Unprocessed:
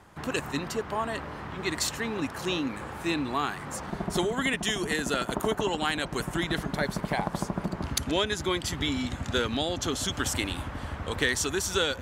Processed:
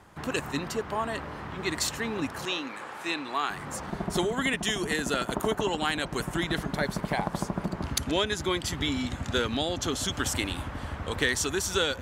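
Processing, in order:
0:02.45–0:03.50: meter weighting curve A

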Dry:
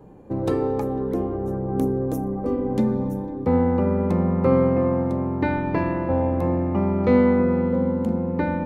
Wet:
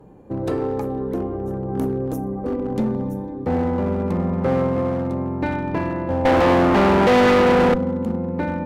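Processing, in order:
0:06.25–0:07.74: mid-hump overdrive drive 30 dB, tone 2,400 Hz, clips at −4.5 dBFS
asymmetric clip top −18.5 dBFS

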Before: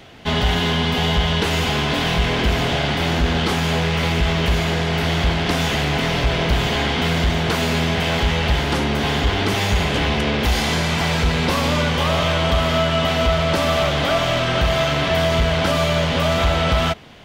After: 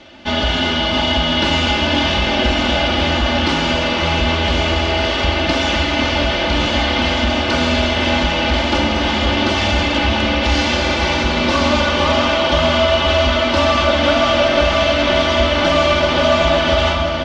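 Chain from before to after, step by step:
low-pass filter 6,200 Hz 24 dB per octave
low-shelf EQ 63 Hz −9 dB
notch filter 1,900 Hz, Q 12
comb filter 3.4 ms, depth 87%
delay that swaps between a low-pass and a high-pass 517 ms, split 1,400 Hz, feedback 71%, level −5.5 dB
comb and all-pass reverb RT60 3.6 s, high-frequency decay 0.7×, pre-delay 5 ms, DRR 3.5 dB

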